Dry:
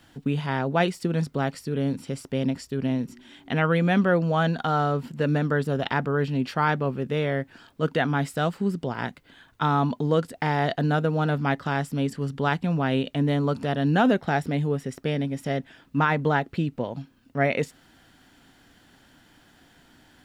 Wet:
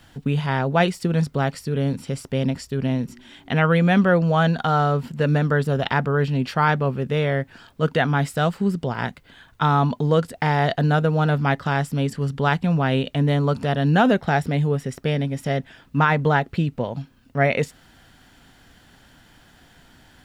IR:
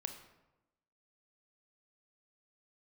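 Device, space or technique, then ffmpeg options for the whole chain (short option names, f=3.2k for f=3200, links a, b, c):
low shelf boost with a cut just above: -af "lowshelf=f=94:g=6.5,equalizer=f=300:t=o:w=0.6:g=-5,volume=4dB"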